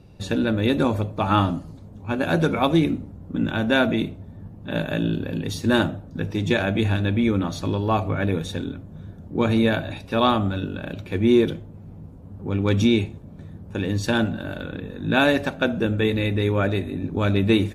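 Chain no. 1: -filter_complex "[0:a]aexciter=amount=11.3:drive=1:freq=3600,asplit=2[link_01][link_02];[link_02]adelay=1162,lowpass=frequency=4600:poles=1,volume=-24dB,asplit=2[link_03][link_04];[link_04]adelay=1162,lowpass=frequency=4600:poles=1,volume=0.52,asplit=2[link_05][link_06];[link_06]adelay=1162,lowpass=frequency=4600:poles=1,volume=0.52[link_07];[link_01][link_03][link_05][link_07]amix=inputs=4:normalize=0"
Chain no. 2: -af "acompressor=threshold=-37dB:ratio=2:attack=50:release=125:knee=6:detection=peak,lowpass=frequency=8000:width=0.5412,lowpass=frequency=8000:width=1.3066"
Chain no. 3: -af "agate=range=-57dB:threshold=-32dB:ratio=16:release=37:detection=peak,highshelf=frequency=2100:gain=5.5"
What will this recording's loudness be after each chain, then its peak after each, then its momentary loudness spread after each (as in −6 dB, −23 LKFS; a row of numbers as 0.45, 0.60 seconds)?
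−20.0, −31.5, −22.0 LKFS; −1.0, −14.0, −3.0 dBFS; 14, 10, 13 LU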